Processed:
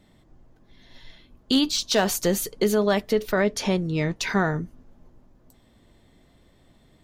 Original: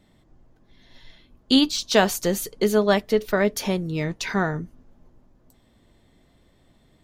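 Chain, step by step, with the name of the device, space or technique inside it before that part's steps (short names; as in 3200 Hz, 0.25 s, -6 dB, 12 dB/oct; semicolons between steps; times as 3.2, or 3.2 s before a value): 3.41–4.16 LPF 7700 Hz 12 dB/oct; clipper into limiter (hard clip -7.5 dBFS, distortion -25 dB; limiter -12.5 dBFS, peak gain reduction 5 dB); gain +1.5 dB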